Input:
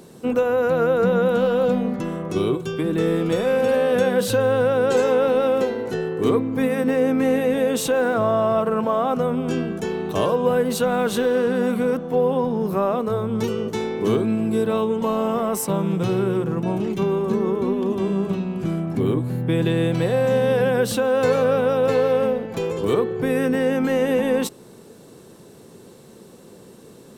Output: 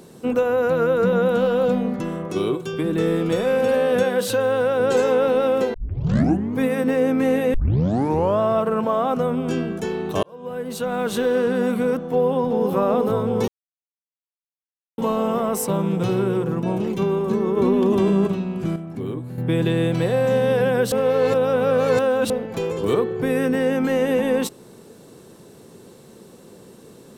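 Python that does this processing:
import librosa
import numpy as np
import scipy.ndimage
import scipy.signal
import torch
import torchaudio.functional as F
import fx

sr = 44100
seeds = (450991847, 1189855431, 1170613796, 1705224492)

y = fx.notch(x, sr, hz=740.0, q=7.6, at=(0.73, 1.13))
y = fx.highpass(y, sr, hz=170.0, slope=6, at=(2.26, 2.73))
y = fx.low_shelf(y, sr, hz=160.0, db=-11.5, at=(4.03, 4.8))
y = fx.echo_throw(y, sr, start_s=12.11, length_s=0.62, ms=380, feedback_pct=85, wet_db=-4.5)
y = fx.env_flatten(y, sr, amount_pct=70, at=(17.56, 18.26), fade=0.02)
y = fx.edit(y, sr, fx.tape_start(start_s=5.74, length_s=0.84),
    fx.tape_start(start_s=7.54, length_s=0.86),
    fx.fade_in_span(start_s=10.23, length_s=1.07),
    fx.silence(start_s=13.48, length_s=1.5),
    fx.clip_gain(start_s=18.76, length_s=0.62, db=-7.5),
    fx.reverse_span(start_s=20.92, length_s=1.38), tone=tone)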